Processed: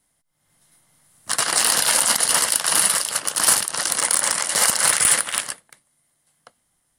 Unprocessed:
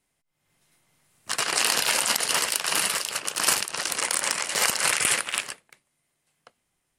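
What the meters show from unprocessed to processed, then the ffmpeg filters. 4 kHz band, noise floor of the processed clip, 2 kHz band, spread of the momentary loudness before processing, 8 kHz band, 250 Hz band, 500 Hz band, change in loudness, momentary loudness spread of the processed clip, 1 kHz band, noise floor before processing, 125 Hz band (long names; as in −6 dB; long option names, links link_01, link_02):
+3.0 dB, −70 dBFS, +2.0 dB, 7 LU, +7.5 dB, +3.5 dB, +3.0 dB, +6.0 dB, 7 LU, +4.0 dB, −77 dBFS, +4.5 dB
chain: -af "aeval=exprs='0.708*(cos(1*acos(clip(val(0)/0.708,-1,1)))-cos(1*PI/2))+0.178*(cos(5*acos(clip(val(0)/0.708,-1,1)))-cos(5*PI/2))':channel_layout=same,equalizer=frequency=400:width_type=o:width=0.33:gain=-7,equalizer=frequency=2500:width_type=o:width=0.33:gain=-9,equalizer=frequency=10000:width_type=o:width=0.33:gain=8,volume=-2dB"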